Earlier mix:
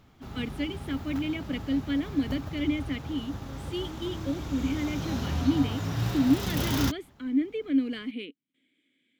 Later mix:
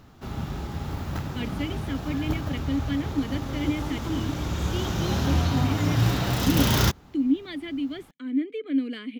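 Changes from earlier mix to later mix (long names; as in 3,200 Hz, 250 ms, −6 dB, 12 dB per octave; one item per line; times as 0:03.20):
speech: entry +1.00 s
background +7.0 dB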